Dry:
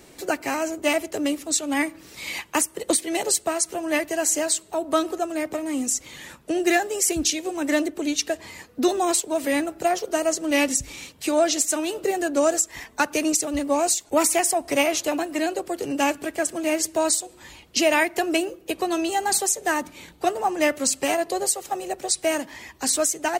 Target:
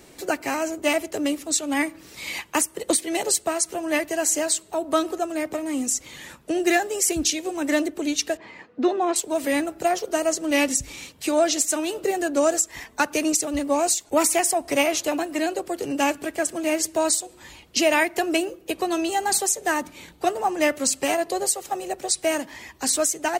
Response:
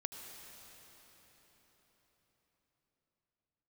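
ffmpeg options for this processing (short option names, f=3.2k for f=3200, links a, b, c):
-filter_complex "[0:a]asettb=1/sr,asplit=3[a][b][c];[a]atrim=end=8.374[d];[b]atrim=start=8.37:end=9.16,asetpts=PTS-STARTPTS,afade=t=in:d=0.004:c=qsin,afade=t=out:st=0.786:d=0.004:c=qsin,highpass=170,lowpass=2.5k[e];[c]atrim=start=9.156[f];[d][e]acrossfade=d=0.004:c1=hsin:c2=qsin[g];[g][f]acrossfade=d=0.004:c1=qsin:c2=hsin"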